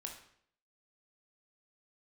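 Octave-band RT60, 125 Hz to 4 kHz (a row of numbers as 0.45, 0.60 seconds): 0.65, 0.65, 0.65, 0.60, 0.60, 0.55 seconds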